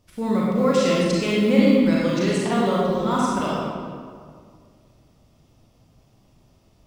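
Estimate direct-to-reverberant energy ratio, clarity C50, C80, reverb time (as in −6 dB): −6.0 dB, −3.0 dB, −1.0 dB, 2.0 s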